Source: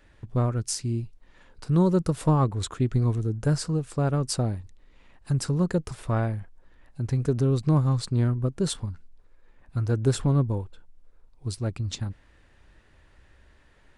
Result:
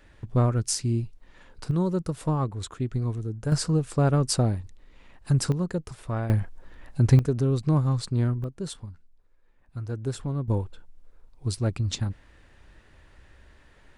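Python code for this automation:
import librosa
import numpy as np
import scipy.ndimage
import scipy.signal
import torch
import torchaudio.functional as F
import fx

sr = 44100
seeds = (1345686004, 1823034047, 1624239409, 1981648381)

y = fx.gain(x, sr, db=fx.steps((0.0, 2.5), (1.71, -4.5), (3.52, 3.0), (5.52, -4.0), (6.3, 9.0), (7.19, -1.0), (8.44, -7.5), (10.48, 3.0)))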